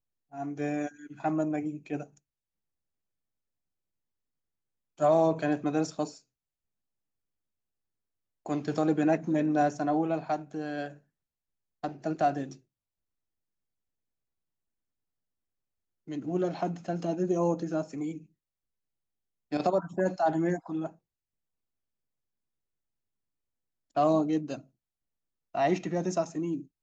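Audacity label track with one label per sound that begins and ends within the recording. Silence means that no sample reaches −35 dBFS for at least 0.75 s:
5.000000	6.090000	sound
8.460000	10.880000	sound
11.840000	12.520000	sound
16.090000	18.170000	sound
19.520000	20.870000	sound
23.960000	24.580000	sound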